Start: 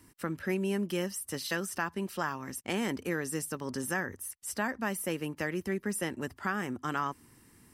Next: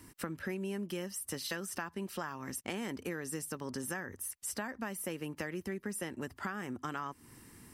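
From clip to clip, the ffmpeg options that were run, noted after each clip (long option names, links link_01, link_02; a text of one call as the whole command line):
ffmpeg -i in.wav -af "acompressor=threshold=-41dB:ratio=4,volume=4dB" out.wav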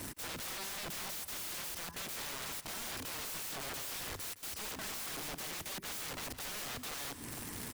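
ffmpeg -i in.wav -af "alimiter=level_in=8dB:limit=-24dB:level=0:latency=1:release=26,volume=-8dB,aeval=exprs='(mod(282*val(0)+1,2)-1)/282':channel_layout=same,aecho=1:1:166:0.188,volume=12dB" out.wav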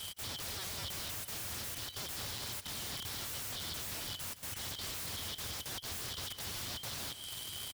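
ffmpeg -i in.wav -af "afftfilt=real='real(if(lt(b,272),68*(eq(floor(b/68),0)*2+eq(floor(b/68),1)*3+eq(floor(b/68),2)*0+eq(floor(b/68),3)*1)+mod(b,68),b),0)':imag='imag(if(lt(b,272),68*(eq(floor(b/68),0)*2+eq(floor(b/68),1)*3+eq(floor(b/68),2)*0+eq(floor(b/68),3)*1)+mod(b,68),b),0)':win_size=2048:overlap=0.75,equalizer=frequency=91:width_type=o:width=1.3:gain=14.5,aecho=1:1:452:0.1" out.wav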